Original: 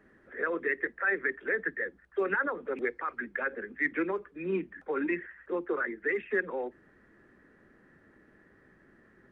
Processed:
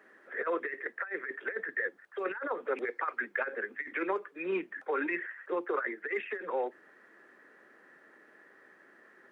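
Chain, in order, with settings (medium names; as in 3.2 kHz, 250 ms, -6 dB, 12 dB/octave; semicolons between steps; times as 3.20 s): high-pass 500 Hz 12 dB/octave; compressor with a negative ratio -34 dBFS, ratio -0.5; trim +2.5 dB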